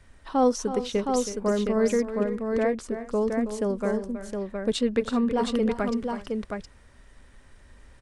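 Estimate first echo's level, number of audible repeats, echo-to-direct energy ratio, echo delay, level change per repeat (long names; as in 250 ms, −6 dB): −11.0 dB, 3, −3.5 dB, 322 ms, repeats not evenly spaced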